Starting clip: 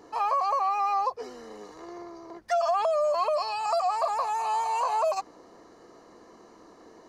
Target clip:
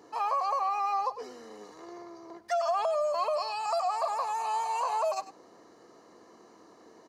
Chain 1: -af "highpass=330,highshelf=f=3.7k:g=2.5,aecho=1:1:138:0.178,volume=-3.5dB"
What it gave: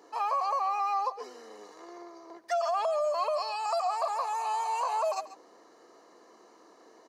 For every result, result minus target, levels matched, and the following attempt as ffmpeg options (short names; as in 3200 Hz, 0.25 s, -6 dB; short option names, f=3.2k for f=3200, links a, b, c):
125 Hz band -12.0 dB; echo 39 ms late
-af "highpass=99,highshelf=f=3.7k:g=2.5,aecho=1:1:138:0.178,volume=-3.5dB"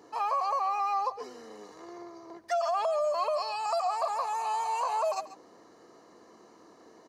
echo 39 ms late
-af "highpass=99,highshelf=f=3.7k:g=2.5,aecho=1:1:99:0.178,volume=-3.5dB"